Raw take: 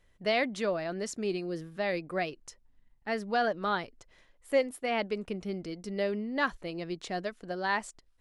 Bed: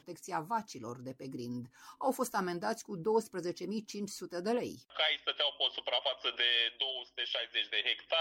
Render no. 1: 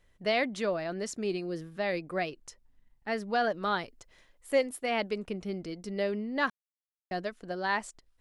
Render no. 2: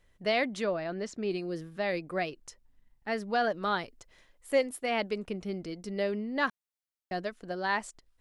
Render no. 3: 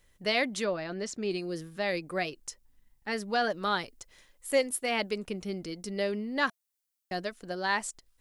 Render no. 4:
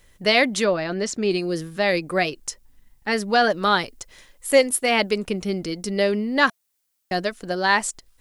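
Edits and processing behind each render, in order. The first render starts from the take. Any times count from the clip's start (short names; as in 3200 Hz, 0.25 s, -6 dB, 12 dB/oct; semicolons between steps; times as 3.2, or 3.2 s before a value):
3.5–5.16 high shelf 4800 Hz +5 dB; 6.5–7.11 mute
0.64–1.31 air absorption 99 m
high shelf 4700 Hz +11.5 dB; notch 670 Hz, Q 16
gain +10 dB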